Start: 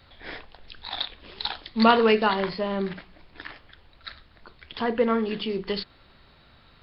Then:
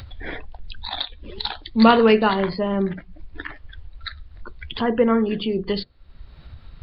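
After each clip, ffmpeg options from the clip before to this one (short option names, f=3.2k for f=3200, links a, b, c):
-af "afftdn=nr=19:nf=-41,lowshelf=f=320:g=7,acompressor=mode=upward:threshold=-26dB:ratio=2.5,volume=2dB"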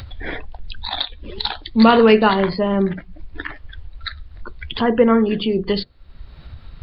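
-af "alimiter=level_in=5dB:limit=-1dB:release=50:level=0:latency=1,volume=-1dB"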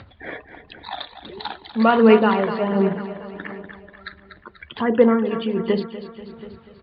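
-filter_complex "[0:a]asplit=2[a][b];[b]aecho=0:1:243|486|729|972|1215|1458|1701:0.299|0.176|0.104|0.0613|0.0362|0.0213|0.0126[c];[a][c]amix=inputs=2:normalize=0,aphaser=in_gain=1:out_gain=1:delay=1.8:decay=0.34:speed=1.4:type=sinusoidal,highpass=170,lowpass=2.4k,volume=-3.5dB"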